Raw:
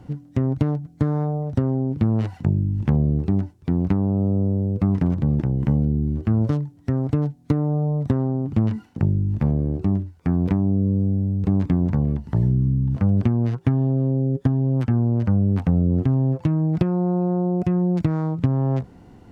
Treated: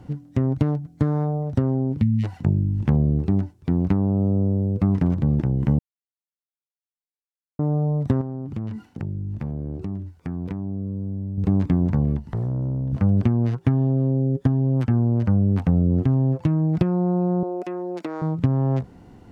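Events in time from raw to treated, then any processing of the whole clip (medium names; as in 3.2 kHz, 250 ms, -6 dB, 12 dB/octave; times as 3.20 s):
2.02–2.24 s: spectral selection erased 240–1800 Hz
5.79–7.59 s: mute
8.21–11.38 s: compression 2.5:1, threshold -29 dBFS
12.19–12.93 s: valve stage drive 21 dB, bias 0.5
17.43–18.22 s: high-pass 330 Hz 24 dB/octave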